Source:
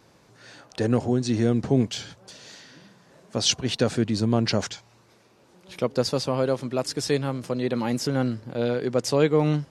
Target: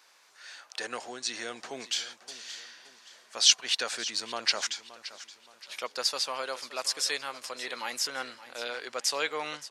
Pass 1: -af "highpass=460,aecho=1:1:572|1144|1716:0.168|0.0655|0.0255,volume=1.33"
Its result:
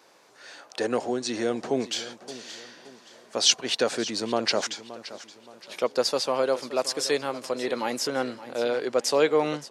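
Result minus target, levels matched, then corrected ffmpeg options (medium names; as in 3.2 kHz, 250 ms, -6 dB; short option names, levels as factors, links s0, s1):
500 Hz band +10.5 dB
-af "highpass=1300,aecho=1:1:572|1144|1716:0.168|0.0655|0.0255,volume=1.33"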